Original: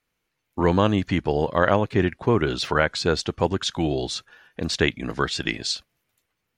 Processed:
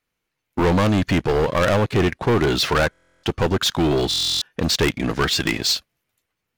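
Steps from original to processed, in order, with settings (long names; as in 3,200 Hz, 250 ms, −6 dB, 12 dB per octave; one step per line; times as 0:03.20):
leveller curve on the samples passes 2
soft clipping −16.5 dBFS, distortion −9 dB
buffer that repeats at 0:02.91/0:04.09, samples 1,024, times 13
level +2.5 dB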